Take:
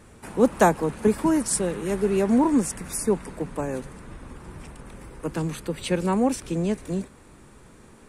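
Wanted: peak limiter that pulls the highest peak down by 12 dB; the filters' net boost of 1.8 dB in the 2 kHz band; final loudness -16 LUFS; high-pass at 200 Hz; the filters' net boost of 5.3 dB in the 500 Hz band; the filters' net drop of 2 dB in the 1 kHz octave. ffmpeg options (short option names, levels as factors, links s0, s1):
-af "highpass=200,equalizer=f=500:t=o:g=8,equalizer=f=1000:t=o:g=-7,equalizer=f=2000:t=o:g=4.5,volume=2.82,alimiter=limit=0.596:level=0:latency=1"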